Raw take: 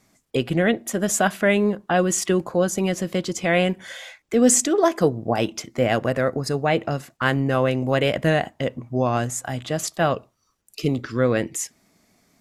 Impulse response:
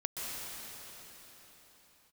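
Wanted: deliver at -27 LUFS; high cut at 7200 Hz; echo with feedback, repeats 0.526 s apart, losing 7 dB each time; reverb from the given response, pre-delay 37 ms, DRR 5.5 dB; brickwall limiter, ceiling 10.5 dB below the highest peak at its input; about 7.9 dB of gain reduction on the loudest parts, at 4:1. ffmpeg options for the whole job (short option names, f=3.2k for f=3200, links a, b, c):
-filter_complex "[0:a]lowpass=7.2k,acompressor=threshold=-21dB:ratio=4,alimiter=limit=-20dB:level=0:latency=1,aecho=1:1:526|1052|1578|2104|2630:0.447|0.201|0.0905|0.0407|0.0183,asplit=2[a][b];[1:a]atrim=start_sample=2205,adelay=37[c];[b][c]afir=irnorm=-1:irlink=0,volume=-9.5dB[d];[a][d]amix=inputs=2:normalize=0,volume=1.5dB"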